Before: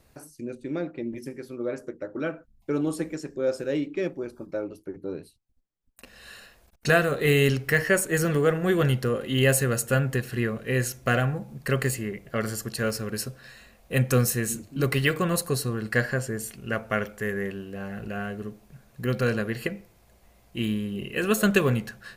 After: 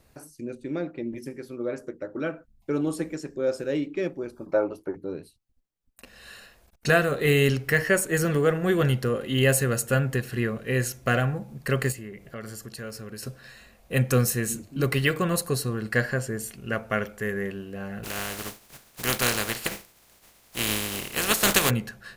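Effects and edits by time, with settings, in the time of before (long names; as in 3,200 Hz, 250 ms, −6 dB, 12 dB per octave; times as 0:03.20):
0:04.46–0:04.95: parametric band 900 Hz +13.5 dB 1.9 octaves
0:11.92–0:13.23: downward compressor 2 to 1, threshold −41 dBFS
0:18.03–0:21.69: compressing power law on the bin magnitudes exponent 0.33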